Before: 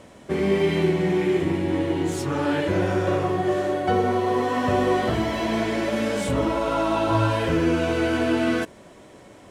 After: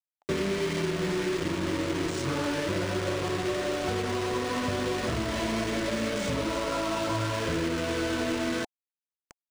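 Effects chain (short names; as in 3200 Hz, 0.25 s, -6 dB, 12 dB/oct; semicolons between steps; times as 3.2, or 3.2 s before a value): 3.88–6.18 low shelf 75 Hz +9.5 dB; compressor 6:1, threshold -32 dBFS, peak gain reduction 15 dB; requantised 6-bit, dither none; Butterworth band-stop 790 Hz, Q 6.1; decimation joined by straight lines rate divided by 3×; gain +4.5 dB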